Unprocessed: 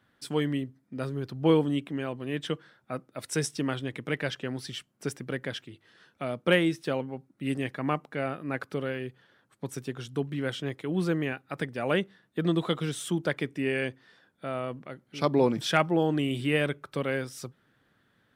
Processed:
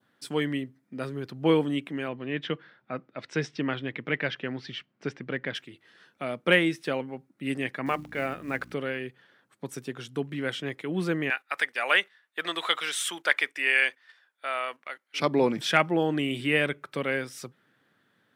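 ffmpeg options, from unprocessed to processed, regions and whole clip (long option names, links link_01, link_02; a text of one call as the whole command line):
ffmpeg -i in.wav -filter_complex "[0:a]asettb=1/sr,asplit=3[link_01][link_02][link_03];[link_01]atrim=end=2.084[link_04];[link_02]atrim=start=2.08:end=5.55,asetpts=PTS-STARTPTS,afade=type=in:duration=0.004:curve=qsin,afade=type=out:start_time=3.466:duration=0.004:curve=qsin,lowpass=frequency=5200:width=0.5412,lowpass=frequency=5200:width=1.3066,bass=frequency=250:gain=2,treble=frequency=4000:gain=-5[link_05];[link_03]atrim=start=5.546[link_06];[link_04][link_05]acrossfade=duration=0.004:curve1=hsin:curve2=qsin[link_07];[link_07][link_06]acrossfade=duration=0.004:curve1=qsin:curve2=hsin,asettb=1/sr,asplit=3[link_08][link_09][link_10];[link_08]atrim=end=7.864[link_11];[link_09]atrim=start=7.86:end=8.73,asetpts=PTS-STARTPTS,afade=type=in:duration=0.004:curve=qsin,afade=type=out:start_time=0.866:duration=0.004:curve=qsin,bandreject=frequency=50:width_type=h:width=6,bandreject=frequency=100:width_type=h:width=6,bandreject=frequency=150:width_type=h:width=6,bandreject=frequency=200:width_type=h:width=6,bandreject=frequency=250:width_type=h:width=6,bandreject=frequency=300:width_type=h:width=6,bandreject=frequency=350:width_type=h:width=6,aeval=exprs='val(0)+0.00708*(sin(2*PI*60*n/s)+sin(2*PI*2*60*n/s)/2+sin(2*PI*3*60*n/s)/3+sin(2*PI*4*60*n/s)/4+sin(2*PI*5*60*n/s)/5)':channel_layout=same,acrusher=bits=7:mode=log:mix=0:aa=0.000001[link_12];[link_10]atrim=start=8.726[link_13];[link_11][link_12]acrossfade=duration=0.004:curve1=hsin:curve2=qsin[link_14];[link_14][link_13]acrossfade=duration=0.004:curve1=qsin:curve2=hsin,asettb=1/sr,asplit=3[link_15][link_16][link_17];[link_15]atrim=end=11.304[link_18];[link_16]atrim=start=11.3:end=15.2,asetpts=PTS-STARTPTS,afade=type=in:duration=0.004:curve=qsin,afade=type=out:start_time=3.896:duration=0.004:curve=qsin,highpass=980,agate=range=-10dB:threshold=-58dB:ratio=16:release=100:detection=peak,acontrast=74[link_19];[link_17]atrim=start=15.196[link_20];[link_18][link_19]acrossfade=duration=0.004:curve1=hsin:curve2=qsin[link_21];[link_21][link_20]acrossfade=duration=0.004:curve1=qsin:curve2=hsin,highpass=150,adynamicequalizer=threshold=0.00398:dfrequency=2100:dqfactor=1.4:tfrequency=2100:tqfactor=1.4:attack=5:release=100:ratio=0.375:range=3:mode=boostabove:tftype=bell" out.wav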